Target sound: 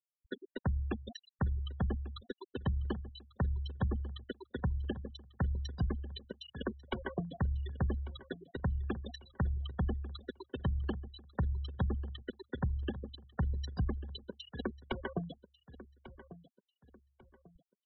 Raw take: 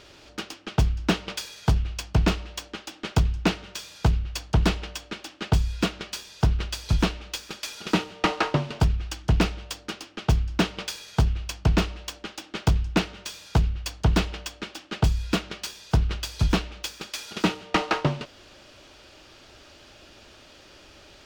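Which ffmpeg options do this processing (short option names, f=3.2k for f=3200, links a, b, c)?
-filter_complex "[0:a]acrossover=split=91|330|3000[a][b][c][d];[a]acompressor=threshold=-26dB:ratio=4[e];[b]acompressor=threshold=-35dB:ratio=4[f];[c]acompressor=threshold=-37dB:ratio=4[g];[d]acompressor=threshold=-43dB:ratio=4[h];[e][f][g][h]amix=inputs=4:normalize=0,bass=f=250:g=1,treble=f=4k:g=-3,acompressor=threshold=-38dB:ratio=1.5,afftfilt=real='re*gte(hypot(re,im),0.0355)':imag='im*gte(hypot(re,im),0.0355)':win_size=1024:overlap=0.75,asetrate=52479,aresample=44100,asplit=2[i][j];[j]adelay=1144,lowpass=f=2.3k:p=1,volume=-15dB,asplit=2[k][l];[l]adelay=1144,lowpass=f=2.3k:p=1,volume=0.35,asplit=2[m][n];[n]adelay=1144,lowpass=f=2.3k:p=1,volume=0.35[o];[k][m][o]amix=inputs=3:normalize=0[p];[i][p]amix=inputs=2:normalize=0"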